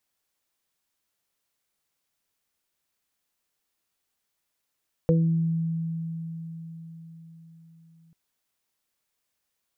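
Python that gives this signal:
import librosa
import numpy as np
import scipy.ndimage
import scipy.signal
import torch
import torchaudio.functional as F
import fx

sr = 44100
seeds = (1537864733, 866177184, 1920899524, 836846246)

y = fx.additive(sr, length_s=3.04, hz=164.0, level_db=-17.5, upper_db=(-10.0, 0.5), decay_s=4.9, upper_decays_s=(0.83, 0.26))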